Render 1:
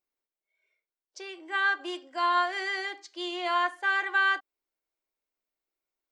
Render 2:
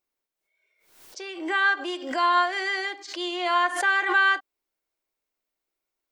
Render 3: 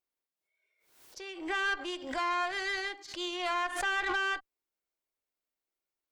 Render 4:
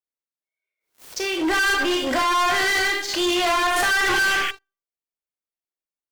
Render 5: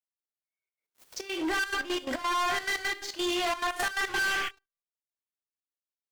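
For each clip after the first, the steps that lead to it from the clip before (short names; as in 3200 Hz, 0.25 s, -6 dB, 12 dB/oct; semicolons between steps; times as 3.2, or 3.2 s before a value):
backwards sustainer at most 79 dB/s; gain +4 dB
limiter -16 dBFS, peak gain reduction 6 dB; tube stage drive 22 dB, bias 0.8; gain -2 dB
Schroeder reverb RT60 0.42 s, combs from 25 ms, DRR 3 dB; painted sound noise, 4.06–4.51, 1400–3400 Hz -42 dBFS; sample leveller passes 5
step gate "x.x.xxxx.x." 174 bpm -12 dB; gain -8 dB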